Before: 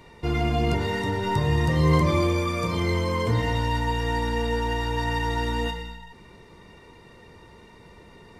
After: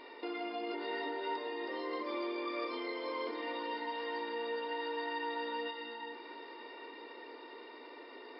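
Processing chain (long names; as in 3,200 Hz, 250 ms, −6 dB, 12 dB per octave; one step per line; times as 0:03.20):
downward compressor 3 to 1, threshold −37 dBFS, peak gain reduction 16 dB
linear-phase brick-wall band-pass 250–5,300 Hz
delay that swaps between a low-pass and a high-pass 461 ms, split 900 Hz, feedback 67%, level −9 dB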